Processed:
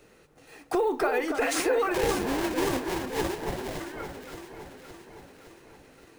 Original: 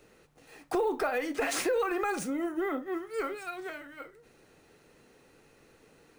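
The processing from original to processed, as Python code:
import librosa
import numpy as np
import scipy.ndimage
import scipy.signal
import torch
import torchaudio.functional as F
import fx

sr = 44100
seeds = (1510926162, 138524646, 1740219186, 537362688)

y = fx.sample_hold(x, sr, seeds[0], rate_hz=1300.0, jitter_pct=20, at=(1.94, 3.8))
y = fx.echo_alternate(y, sr, ms=283, hz=1700.0, feedback_pct=75, wet_db=-6.5)
y = y * librosa.db_to_amplitude(3.0)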